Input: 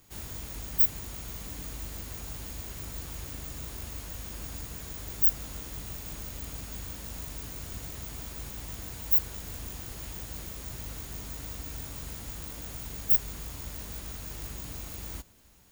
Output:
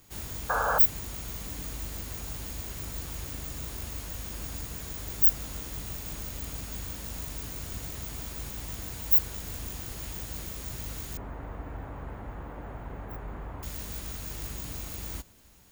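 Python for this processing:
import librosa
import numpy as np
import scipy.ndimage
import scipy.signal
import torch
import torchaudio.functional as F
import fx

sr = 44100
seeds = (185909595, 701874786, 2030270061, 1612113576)

y = fx.spec_paint(x, sr, seeds[0], shape='noise', start_s=0.49, length_s=0.3, low_hz=440.0, high_hz=1700.0, level_db=-29.0)
y = fx.curve_eq(y, sr, hz=(180.0, 870.0, 1800.0, 5200.0), db=(0, 7, -1, -29), at=(11.17, 13.63))
y = F.gain(torch.from_numpy(y), 2.0).numpy()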